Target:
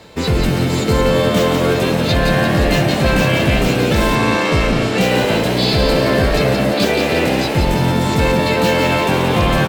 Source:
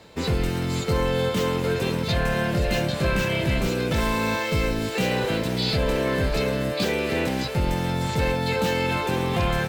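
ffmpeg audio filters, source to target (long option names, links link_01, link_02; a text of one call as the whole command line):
ffmpeg -i in.wav -filter_complex "[0:a]asplit=8[link_01][link_02][link_03][link_04][link_05][link_06][link_07][link_08];[link_02]adelay=173,afreqshift=80,volume=-5.5dB[link_09];[link_03]adelay=346,afreqshift=160,volume=-10.7dB[link_10];[link_04]adelay=519,afreqshift=240,volume=-15.9dB[link_11];[link_05]adelay=692,afreqshift=320,volume=-21.1dB[link_12];[link_06]adelay=865,afreqshift=400,volume=-26.3dB[link_13];[link_07]adelay=1038,afreqshift=480,volume=-31.5dB[link_14];[link_08]adelay=1211,afreqshift=560,volume=-36.7dB[link_15];[link_01][link_09][link_10][link_11][link_12][link_13][link_14][link_15]amix=inputs=8:normalize=0,asettb=1/sr,asplit=3[link_16][link_17][link_18];[link_16]atrim=end=4.154[link_19];[link_17]atrim=start=4.15:end=5.01,asetpts=PTS-STARTPTS,afade=type=in:duration=0.004:curve=qsin,afade=type=out:start_time=0.856:duration=0.004:curve=qsin,adynamicsmooth=sensitivity=5:basefreq=7700[link_20];[link_18]atrim=start=5.006[link_21];[link_19][link_20]acrossfade=duration=0.004:curve1=hsin:curve2=qsin[link_22];[link_22][link_21]acrossfade=duration=0.004:curve1=qsin:curve2=hsin,volume=7.5dB" out.wav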